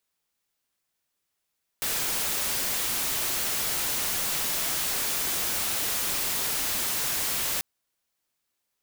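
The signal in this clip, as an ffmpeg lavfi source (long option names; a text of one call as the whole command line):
ffmpeg -f lavfi -i "anoisesrc=color=white:amplitude=0.0689:duration=5.79:sample_rate=44100:seed=1" out.wav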